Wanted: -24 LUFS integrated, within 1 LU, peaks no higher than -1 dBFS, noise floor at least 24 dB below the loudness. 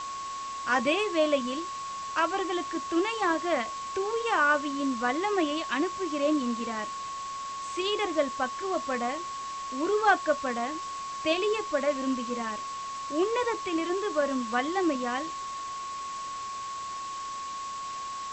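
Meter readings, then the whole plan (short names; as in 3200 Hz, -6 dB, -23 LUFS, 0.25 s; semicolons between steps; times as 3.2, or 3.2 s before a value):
steady tone 1100 Hz; tone level -34 dBFS; noise floor -37 dBFS; noise floor target -54 dBFS; loudness -29.5 LUFS; peak -10.5 dBFS; loudness target -24.0 LUFS
-> notch 1100 Hz, Q 30; noise print and reduce 17 dB; gain +5.5 dB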